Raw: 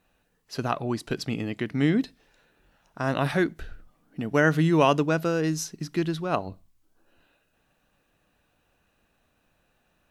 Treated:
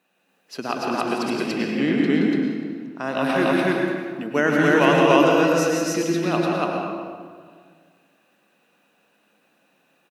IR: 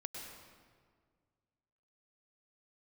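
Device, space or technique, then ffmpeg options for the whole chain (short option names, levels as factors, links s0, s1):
stadium PA: -filter_complex "[0:a]asettb=1/sr,asplit=3[s0][s1][s2];[s0]atrim=end=1.204[s3];[s1]atrim=start=1.2:end=3.12,asetpts=PTS-STARTPTS,afade=t=in:d=0.004:c=qsin,afade=t=out:st=1.916:d=0.004:c=qsin,highshelf=f=6400:g=-5.5[s4];[s2]atrim=start=3.116[s5];[s3][s4]acrossfade=d=0.004:c1=hsin:c2=qsin[s6];[s6][s5]acrossfade=d=0.004:c1=qsin:c2=hsin,highpass=f=190:w=0.5412,highpass=f=190:w=1.3066,equalizer=f=2600:t=o:w=0.37:g=4,aecho=1:1:172|288.6:0.501|1[s7];[1:a]atrim=start_sample=2205[s8];[s7][s8]afir=irnorm=-1:irlink=0,volume=1.68"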